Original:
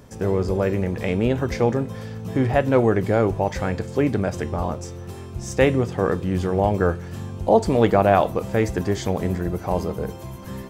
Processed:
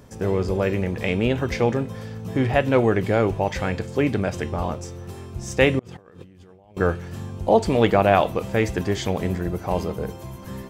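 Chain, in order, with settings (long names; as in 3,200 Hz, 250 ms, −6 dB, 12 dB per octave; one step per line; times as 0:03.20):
dynamic equaliser 2,800 Hz, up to +7 dB, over −43 dBFS, Q 1.2
0:05.79–0:06.77: compressor whose output falls as the input rises −46 dBFS, ratio −1
level −1 dB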